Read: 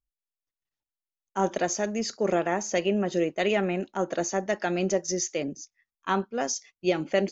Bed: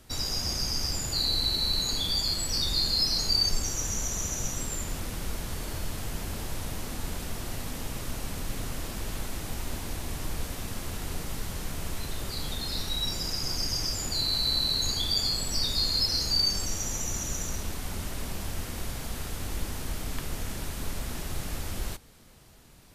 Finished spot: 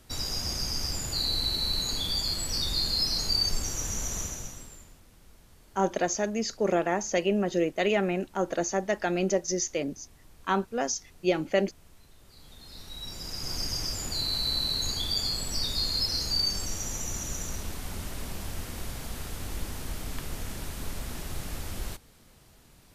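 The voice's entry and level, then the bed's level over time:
4.40 s, -0.5 dB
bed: 4.2 s -1.5 dB
5.01 s -22 dB
12.2 s -22 dB
13.56 s -2 dB

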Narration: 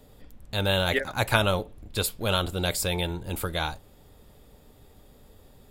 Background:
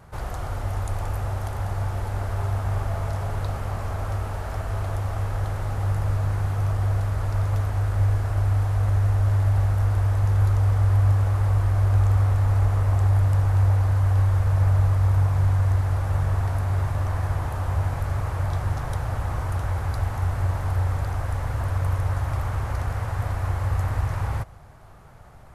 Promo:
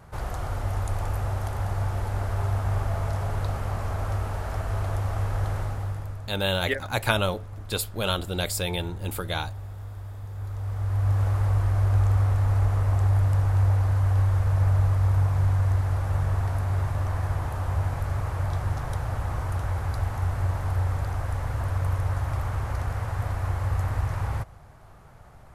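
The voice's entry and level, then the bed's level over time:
5.75 s, -1.0 dB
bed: 5.59 s -0.5 dB
6.35 s -16.5 dB
10.31 s -16.5 dB
11.23 s -2 dB

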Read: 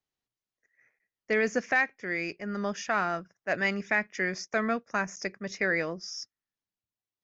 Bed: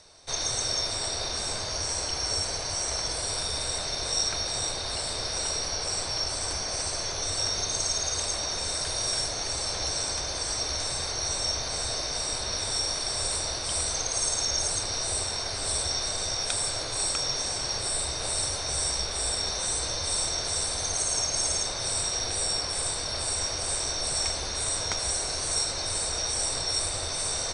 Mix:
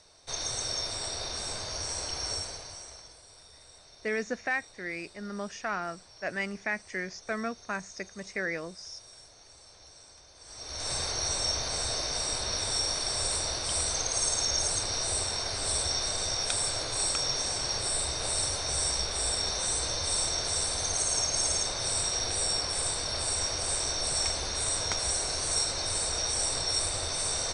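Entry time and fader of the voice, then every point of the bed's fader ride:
2.75 s, -5.0 dB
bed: 2.31 s -4.5 dB
3.23 s -23.5 dB
10.35 s -23.5 dB
10.92 s -1 dB

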